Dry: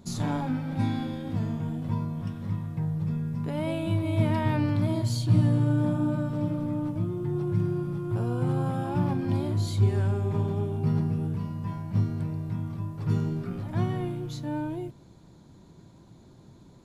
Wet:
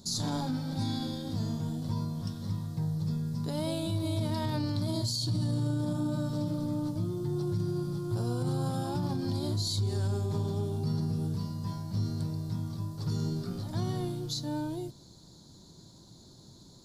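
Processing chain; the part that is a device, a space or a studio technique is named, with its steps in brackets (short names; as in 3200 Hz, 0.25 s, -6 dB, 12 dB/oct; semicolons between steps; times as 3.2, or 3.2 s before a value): over-bright horn tweeter (resonant high shelf 3300 Hz +10 dB, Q 3; limiter -20.5 dBFS, peak gain reduction 11 dB); gain -2.5 dB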